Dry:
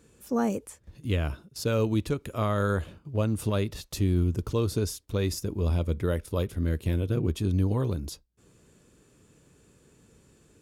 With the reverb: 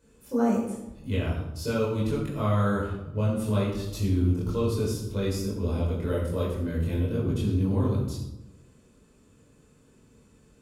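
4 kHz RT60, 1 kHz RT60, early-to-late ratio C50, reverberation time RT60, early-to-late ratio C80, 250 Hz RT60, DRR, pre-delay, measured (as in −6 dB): 0.60 s, 0.90 s, 2.5 dB, 0.95 s, 5.0 dB, 1.2 s, −6.5 dB, 21 ms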